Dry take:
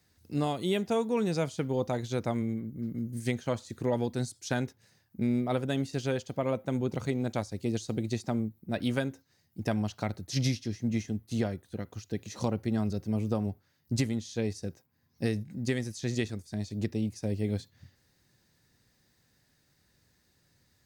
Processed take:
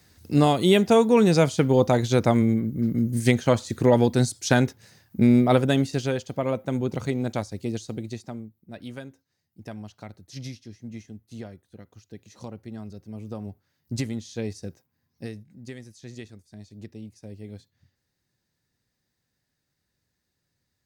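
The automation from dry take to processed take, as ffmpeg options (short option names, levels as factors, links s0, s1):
-af "volume=10,afade=t=out:st=5.53:d=0.59:silence=0.446684,afade=t=out:st=7.32:d=1.15:silence=0.237137,afade=t=in:st=13.12:d=0.97:silence=0.354813,afade=t=out:st=14.69:d=0.73:silence=0.316228"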